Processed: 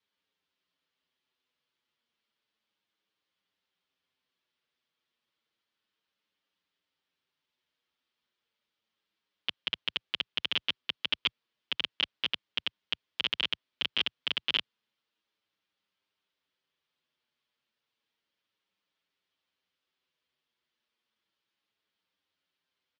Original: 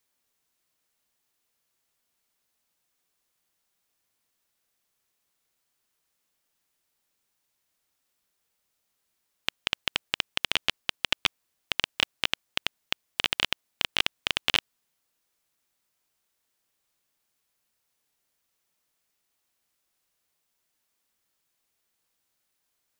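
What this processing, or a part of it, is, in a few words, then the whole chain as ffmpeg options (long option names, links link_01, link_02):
barber-pole flanger into a guitar amplifier: -filter_complex "[0:a]asplit=2[link_01][link_02];[link_02]adelay=7,afreqshift=-0.32[link_03];[link_01][link_03]amix=inputs=2:normalize=1,asoftclip=type=tanh:threshold=-15.5dB,highpass=95,equalizer=frequency=120:width_type=q:width=4:gain=-5,equalizer=frequency=720:width_type=q:width=4:gain=-6,equalizer=frequency=3200:width_type=q:width=4:gain=5,lowpass=frequency=4500:width=0.5412,lowpass=frequency=4500:width=1.3066"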